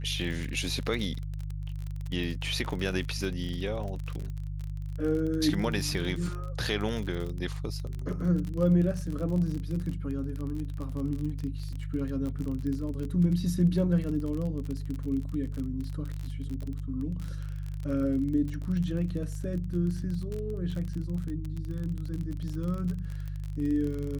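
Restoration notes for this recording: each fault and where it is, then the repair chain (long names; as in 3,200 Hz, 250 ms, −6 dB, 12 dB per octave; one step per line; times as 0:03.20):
surface crackle 37 per second −33 dBFS
mains hum 50 Hz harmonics 3 −35 dBFS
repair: click removal
hum removal 50 Hz, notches 3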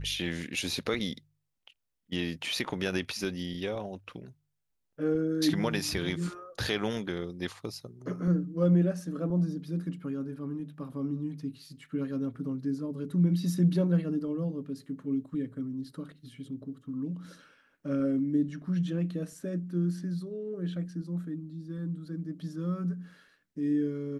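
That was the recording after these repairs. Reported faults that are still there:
none of them is left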